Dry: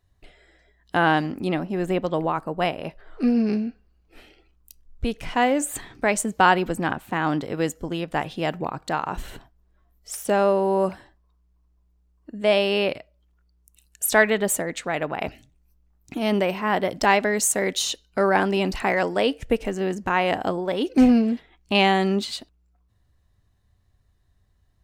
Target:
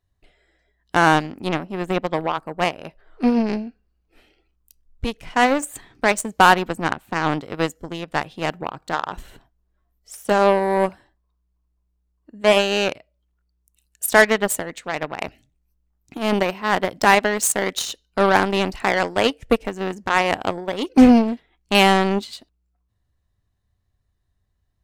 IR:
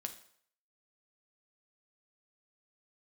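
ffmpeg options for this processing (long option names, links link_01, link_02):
-af "aeval=exprs='0.596*(cos(1*acos(clip(val(0)/0.596,-1,1)))-cos(1*PI/2))+0.0668*(cos(7*acos(clip(val(0)/0.596,-1,1)))-cos(7*PI/2))':channel_layout=same,acontrast=76"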